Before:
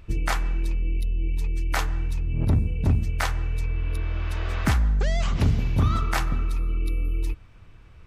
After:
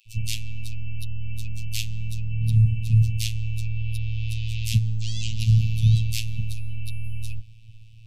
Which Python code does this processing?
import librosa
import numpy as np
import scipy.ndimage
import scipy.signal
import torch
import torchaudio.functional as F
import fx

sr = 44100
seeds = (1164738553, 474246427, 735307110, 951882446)

y = scipy.signal.sosfilt(scipy.signal.cheby1(5, 1.0, [170.0, 2600.0], 'bandstop', fs=sr, output='sos'), x)
y = fx.dispersion(y, sr, late='lows', ms=64.0, hz=1200.0)
y = fx.robotise(y, sr, hz=111.0)
y = F.gain(torch.from_numpy(y), 6.5).numpy()